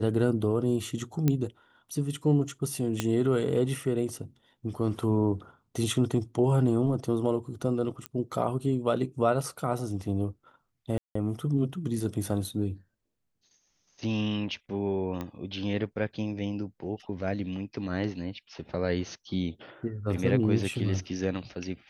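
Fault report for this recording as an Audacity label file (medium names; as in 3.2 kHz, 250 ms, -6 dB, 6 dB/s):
1.280000	1.280000	pop -12 dBFS
3.000000	3.000000	pop -12 dBFS
8.060000	8.060000	pop -19 dBFS
10.980000	11.150000	dropout 174 ms
15.210000	15.210000	pop -22 dBFS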